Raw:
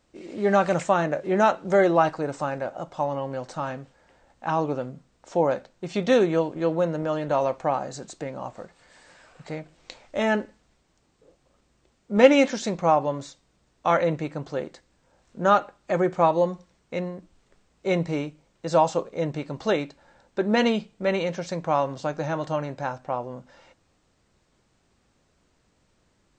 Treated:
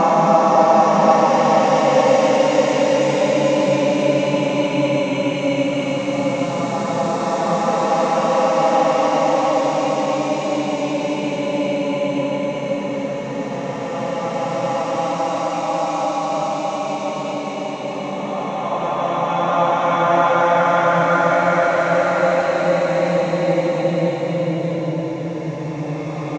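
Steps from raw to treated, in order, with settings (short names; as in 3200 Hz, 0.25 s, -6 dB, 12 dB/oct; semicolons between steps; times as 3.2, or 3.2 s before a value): vibrato 1.8 Hz 65 cents; bouncing-ball echo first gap 0.4 s, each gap 0.9×, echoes 5; Paulstretch 20×, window 0.25 s, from 12.89; gain +4 dB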